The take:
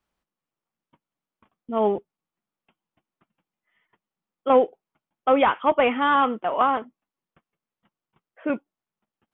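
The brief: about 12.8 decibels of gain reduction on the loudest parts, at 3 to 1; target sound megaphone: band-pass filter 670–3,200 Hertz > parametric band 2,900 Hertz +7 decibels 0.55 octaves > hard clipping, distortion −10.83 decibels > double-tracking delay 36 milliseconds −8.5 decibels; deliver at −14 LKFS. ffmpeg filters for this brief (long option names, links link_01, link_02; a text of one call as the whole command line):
ffmpeg -i in.wav -filter_complex "[0:a]acompressor=threshold=-31dB:ratio=3,highpass=670,lowpass=3200,equalizer=frequency=2900:width_type=o:width=0.55:gain=7,asoftclip=type=hard:threshold=-30dB,asplit=2[link_01][link_02];[link_02]adelay=36,volume=-8.5dB[link_03];[link_01][link_03]amix=inputs=2:normalize=0,volume=23dB" out.wav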